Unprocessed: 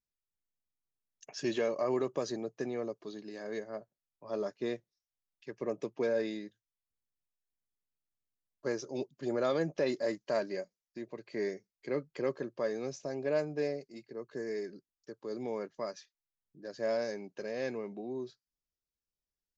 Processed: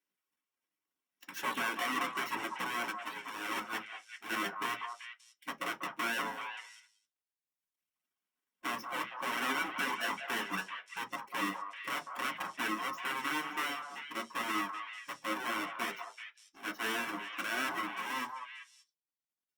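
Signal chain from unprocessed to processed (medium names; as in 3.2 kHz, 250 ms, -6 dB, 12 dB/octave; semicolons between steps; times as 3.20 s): square wave that keeps the level; reverb removal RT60 1.4 s; spectral gate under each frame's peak -10 dB weak; bass shelf 290 Hz -7.5 dB; peak limiter -29.5 dBFS, peak gain reduction 10 dB; peaking EQ 400 Hz -2.5 dB 0.35 oct; repeats whose band climbs or falls 193 ms, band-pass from 910 Hz, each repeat 1.4 oct, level -3.5 dB; reverberation RT60 0.15 s, pre-delay 3 ms, DRR 2.5 dB; Opus 64 kbps 48 kHz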